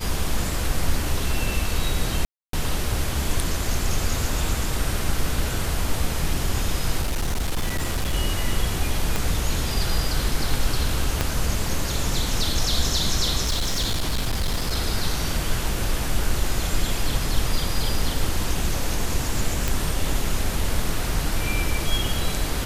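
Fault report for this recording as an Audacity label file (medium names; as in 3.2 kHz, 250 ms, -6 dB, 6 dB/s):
2.250000	2.530000	dropout 283 ms
7.010000	8.140000	clipped -19.5 dBFS
9.160000	9.160000	pop
11.210000	11.210000	pop -7 dBFS
13.420000	14.750000	clipped -19 dBFS
19.680000	19.680000	pop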